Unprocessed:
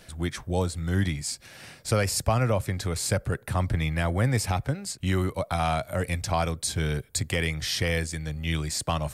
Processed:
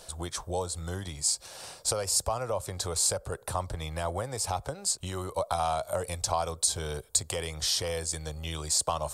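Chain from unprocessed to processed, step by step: compression, threshold -28 dBFS, peak gain reduction 10 dB; graphic EQ 125/250/500/1000/2000/4000/8000 Hz -7/-9/+5/+8/-11/+4/+8 dB

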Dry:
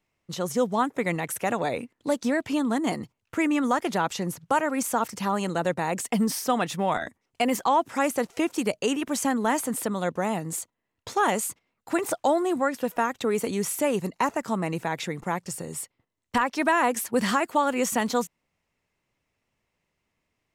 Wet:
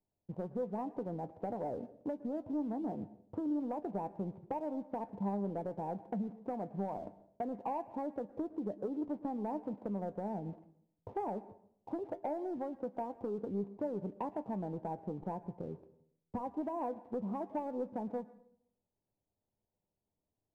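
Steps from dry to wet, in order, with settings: steep low-pass 910 Hz 48 dB/octave; compression, threshold -31 dBFS, peak gain reduction 12 dB; waveshaping leveller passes 1; feedback comb 100 Hz, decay 0.15 s, harmonics all, mix 60%; on a send: reverberation RT60 0.65 s, pre-delay 107 ms, DRR 16.5 dB; on the sum: trim -3.5 dB

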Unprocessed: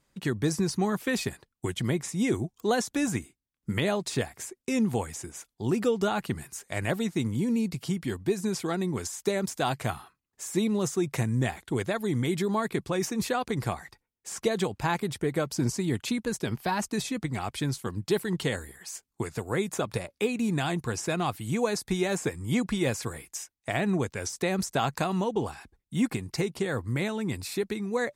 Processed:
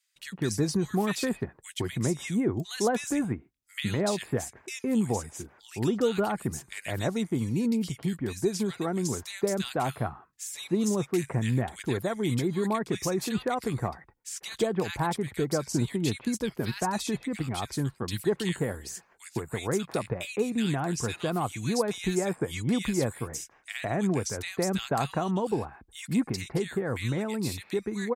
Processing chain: bands offset in time highs, lows 160 ms, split 1.8 kHz

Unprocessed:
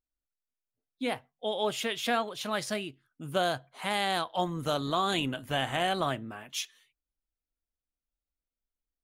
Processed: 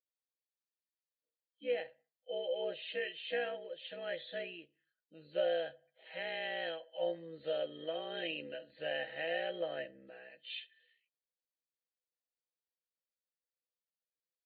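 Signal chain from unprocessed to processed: knee-point frequency compression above 3 kHz 4:1; vowel filter e; granular stretch 1.6×, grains 33 ms; trim +4 dB

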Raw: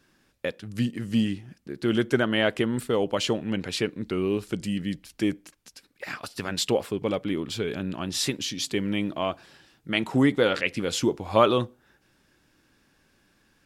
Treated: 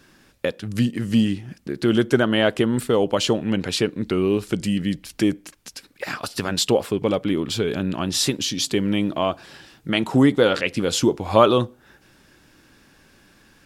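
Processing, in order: in parallel at +0.5 dB: compression, threshold -37 dBFS, peak gain reduction 21.5 dB; on the sum: dynamic bell 2.1 kHz, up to -5 dB, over -40 dBFS, Q 2; trim +4 dB

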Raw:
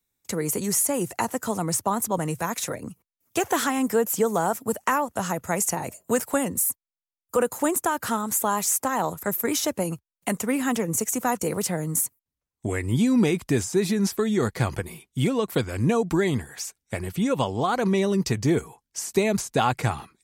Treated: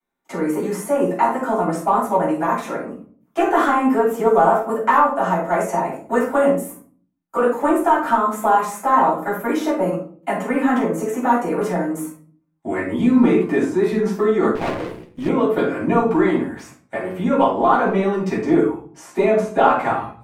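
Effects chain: three-band isolator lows -22 dB, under 260 Hz, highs -20 dB, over 2.2 kHz; feedback comb 62 Hz, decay 0.19 s, harmonics odd, mix 70%; in parallel at -10.5 dB: saturation -26 dBFS, distortion -14 dB; on the sum: reverberation RT60 0.45 s, pre-delay 3 ms, DRR -8.5 dB; 14.55–15.29 s: sliding maximum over 17 samples; trim +1.5 dB

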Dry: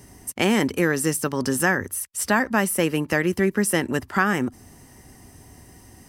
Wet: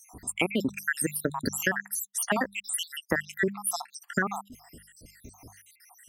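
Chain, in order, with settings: random holes in the spectrogram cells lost 77%; hum notches 50/100/150/200 Hz; compression 6:1, threshold -27 dBFS, peak gain reduction 10 dB; trim +4 dB

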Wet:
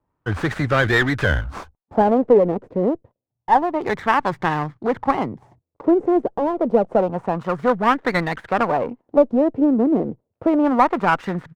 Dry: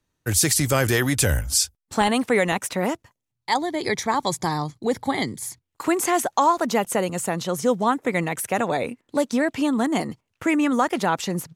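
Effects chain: resampled via 22.05 kHz; Chebyshev shaper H 4 -18 dB, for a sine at -6.5 dBFS; LFO low-pass sine 0.28 Hz 440–1800 Hz; sliding maximum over 5 samples; trim +1.5 dB

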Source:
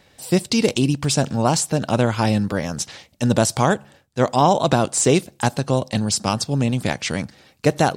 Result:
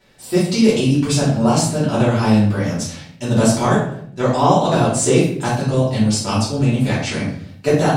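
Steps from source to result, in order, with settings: simulated room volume 110 m³, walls mixed, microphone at 2.9 m; trim -9.5 dB

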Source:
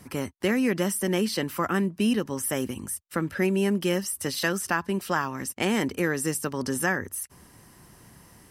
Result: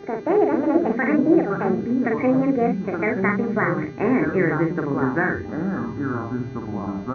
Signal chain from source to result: gliding tape speed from 167% -> 71%; steep low-pass 2.2 kHz 72 dB/octave; peaking EQ 1.1 kHz -5 dB 1.9 oct; comb 2.7 ms, depth 33%; de-hum 59.2 Hz, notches 10; mains buzz 400 Hz, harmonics 16, -50 dBFS -8 dB/octave; early reflections 12 ms -16 dB, 43 ms -5 dB; ever faster or slower copies 180 ms, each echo -5 st, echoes 3, each echo -6 dB; trim +6 dB

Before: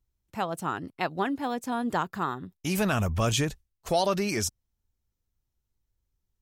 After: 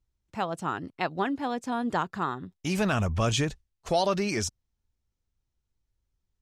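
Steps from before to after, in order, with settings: low-pass 7.4 kHz 12 dB/octave

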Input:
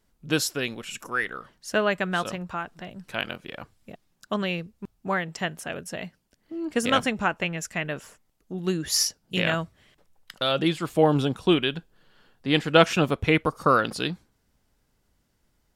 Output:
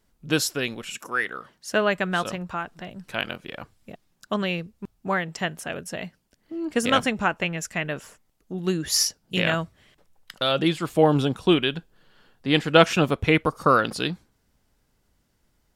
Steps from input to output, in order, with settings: 0.90–1.80 s: high-pass 230 Hz -> 87 Hz 6 dB/octave; trim +1.5 dB

